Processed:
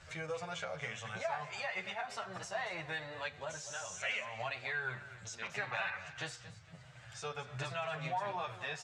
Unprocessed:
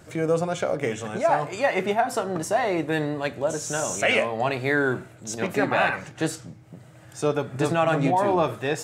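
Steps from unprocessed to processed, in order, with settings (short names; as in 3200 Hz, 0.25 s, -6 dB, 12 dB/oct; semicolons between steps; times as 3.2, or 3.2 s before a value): passive tone stack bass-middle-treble 10-0-10; compressor 2.5:1, threshold -45 dBFS, peak gain reduction 14.5 dB; air absorption 130 m; on a send: feedback echo 0.23 s, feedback 32%, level -14.5 dB; on the sum: endless flanger 8.9 ms -1.5 Hz; gain +8.5 dB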